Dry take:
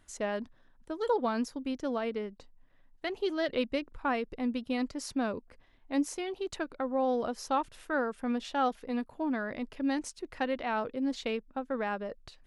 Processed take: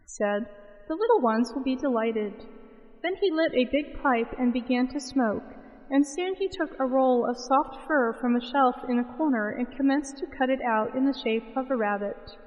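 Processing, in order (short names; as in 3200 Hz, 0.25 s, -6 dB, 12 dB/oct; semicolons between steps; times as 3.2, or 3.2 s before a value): loudest bins only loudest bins 32; spring tank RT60 3.1 s, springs 31/37 ms, chirp 40 ms, DRR 16.5 dB; gain +7 dB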